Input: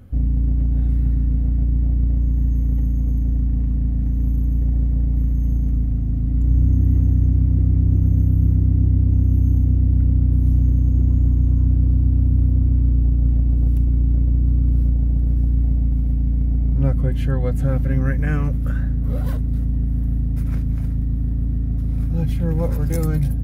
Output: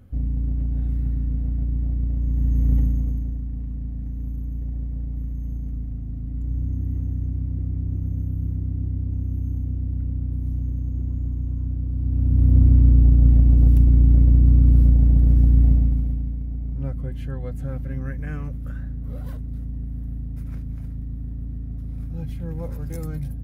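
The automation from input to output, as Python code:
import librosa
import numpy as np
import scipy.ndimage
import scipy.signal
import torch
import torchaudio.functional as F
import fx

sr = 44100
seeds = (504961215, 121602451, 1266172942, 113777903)

y = fx.gain(x, sr, db=fx.line((2.16, -5.5), (2.75, 1.5), (3.41, -10.0), (11.91, -10.0), (12.57, 3.0), (15.7, 3.0), (16.4, -10.0)))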